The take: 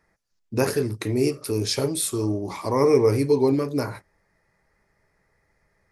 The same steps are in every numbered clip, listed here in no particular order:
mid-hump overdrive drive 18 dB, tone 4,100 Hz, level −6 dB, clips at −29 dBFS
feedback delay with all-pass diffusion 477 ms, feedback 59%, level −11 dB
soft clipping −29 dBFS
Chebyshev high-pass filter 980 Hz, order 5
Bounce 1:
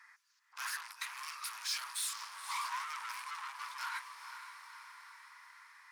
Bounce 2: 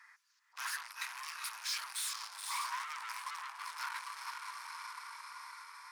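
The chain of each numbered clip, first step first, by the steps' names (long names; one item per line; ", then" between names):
mid-hump overdrive, then feedback delay with all-pass diffusion, then soft clipping, then Chebyshev high-pass filter
feedback delay with all-pass diffusion, then soft clipping, then mid-hump overdrive, then Chebyshev high-pass filter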